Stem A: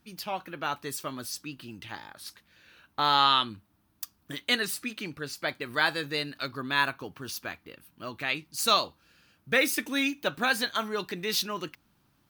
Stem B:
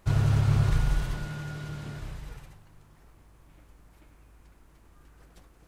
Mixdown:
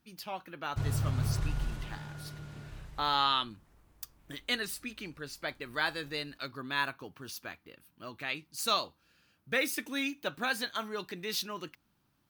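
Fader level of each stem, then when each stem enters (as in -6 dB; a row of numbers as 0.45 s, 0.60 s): -6.0 dB, -8.0 dB; 0.00 s, 0.70 s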